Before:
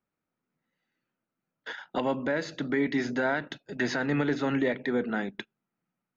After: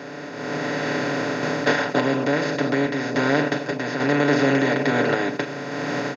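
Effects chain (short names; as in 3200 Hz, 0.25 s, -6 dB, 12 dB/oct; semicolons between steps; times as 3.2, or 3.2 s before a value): per-bin compression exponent 0.2; HPF 95 Hz; comb 6.9 ms, depth 72%; AGC gain up to 16 dB; random-step tremolo; gain -4.5 dB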